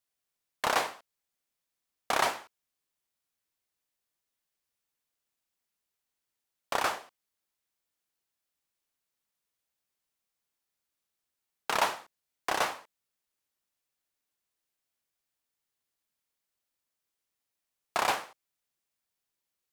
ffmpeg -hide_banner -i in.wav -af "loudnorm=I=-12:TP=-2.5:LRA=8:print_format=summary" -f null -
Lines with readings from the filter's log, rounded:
Input Integrated:    -31.2 LUFS
Input True Peak:     -12.3 dBTP
Input LRA:             4.1 LU
Input Threshold:     -42.4 LUFS